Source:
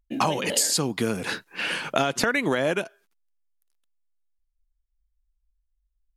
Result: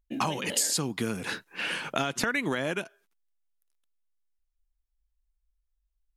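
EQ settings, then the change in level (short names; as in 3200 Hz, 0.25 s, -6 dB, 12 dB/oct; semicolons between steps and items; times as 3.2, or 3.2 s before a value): bell 4600 Hz -3 dB 0.22 oct; dynamic EQ 570 Hz, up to -5 dB, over -35 dBFS, Q 1.2; -3.5 dB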